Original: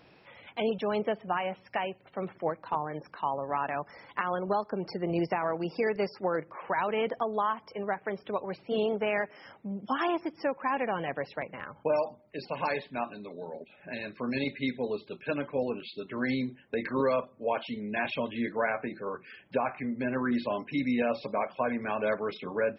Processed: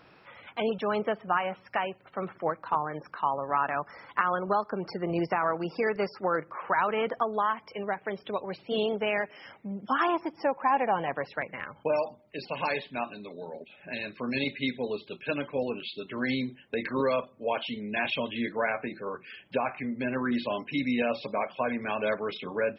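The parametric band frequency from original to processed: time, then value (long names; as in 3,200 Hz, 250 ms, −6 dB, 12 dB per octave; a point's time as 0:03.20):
parametric band +8 dB 0.73 octaves
0:07.21 1,300 Hz
0:07.96 3,500 Hz
0:09.20 3,500 Hz
0:10.39 820 Hz
0:10.98 820 Hz
0:11.84 3,100 Hz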